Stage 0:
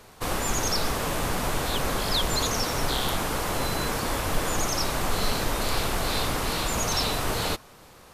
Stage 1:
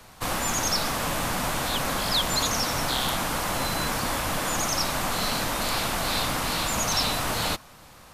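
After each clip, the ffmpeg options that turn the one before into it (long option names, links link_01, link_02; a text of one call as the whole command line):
ffmpeg -i in.wav -filter_complex "[0:a]equalizer=frequency=410:width_type=o:width=0.58:gain=-8.5,acrossover=split=130|790|1800[link_01][link_02][link_03][link_04];[link_01]acompressor=threshold=-35dB:ratio=6[link_05];[link_05][link_02][link_03][link_04]amix=inputs=4:normalize=0,volume=2dB" out.wav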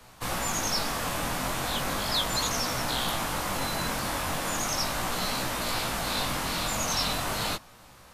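ffmpeg -i in.wav -af "flanger=delay=16:depth=7.2:speed=0.37" out.wav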